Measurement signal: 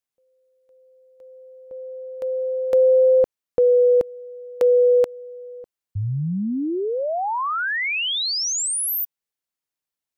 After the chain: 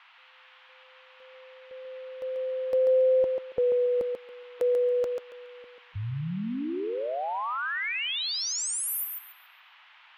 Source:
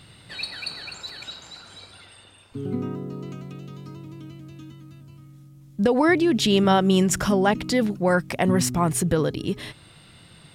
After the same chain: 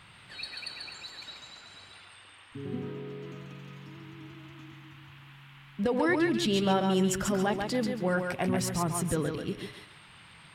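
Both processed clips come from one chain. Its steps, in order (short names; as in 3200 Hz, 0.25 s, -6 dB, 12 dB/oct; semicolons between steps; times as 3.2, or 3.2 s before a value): bin magnitudes rounded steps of 15 dB; band noise 840–3200 Hz -49 dBFS; thinning echo 0.139 s, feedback 23%, high-pass 220 Hz, level -4.5 dB; gain -8 dB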